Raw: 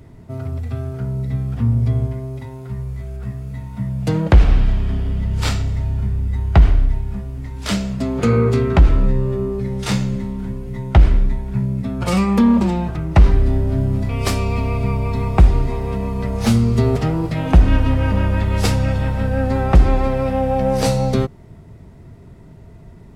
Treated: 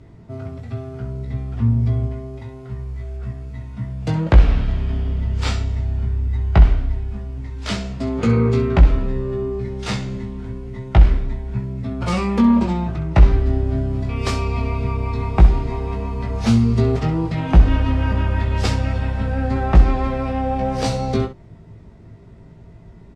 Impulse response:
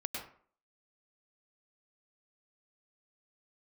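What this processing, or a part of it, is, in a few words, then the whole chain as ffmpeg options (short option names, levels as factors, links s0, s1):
slapback doubling: -filter_complex "[0:a]lowpass=6500,asplit=3[s0][s1][s2];[s1]adelay=18,volume=0.562[s3];[s2]adelay=65,volume=0.251[s4];[s0][s3][s4]amix=inputs=3:normalize=0,volume=0.708"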